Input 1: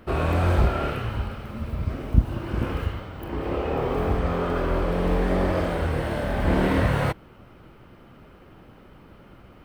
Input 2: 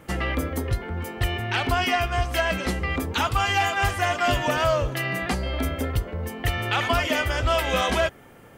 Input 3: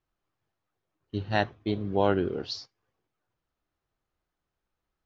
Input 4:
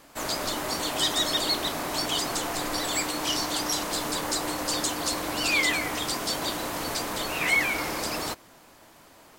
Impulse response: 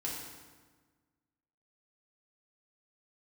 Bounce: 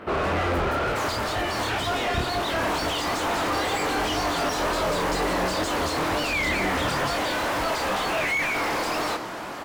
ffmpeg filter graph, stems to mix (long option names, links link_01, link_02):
-filter_complex "[0:a]volume=-4.5dB[link_01];[1:a]adelay=150,volume=-8dB[link_02];[2:a]volume=-11.5dB,asplit=2[link_03][link_04];[3:a]adelay=800,volume=3dB,asplit=2[link_05][link_06];[link_06]volume=-23dB[link_07];[link_04]apad=whole_len=449117[link_08];[link_05][link_08]sidechaincompress=threshold=-49dB:ratio=8:attack=16:release=156[link_09];[4:a]atrim=start_sample=2205[link_10];[link_07][link_10]afir=irnorm=-1:irlink=0[link_11];[link_01][link_02][link_03][link_09][link_11]amix=inputs=5:normalize=0,flanger=delay=20:depth=7.8:speed=2.1,asplit=2[link_12][link_13];[link_13]highpass=frequency=720:poles=1,volume=30dB,asoftclip=type=tanh:threshold=-16.5dB[link_14];[link_12][link_14]amix=inputs=2:normalize=0,lowpass=frequency=1500:poles=1,volume=-6dB"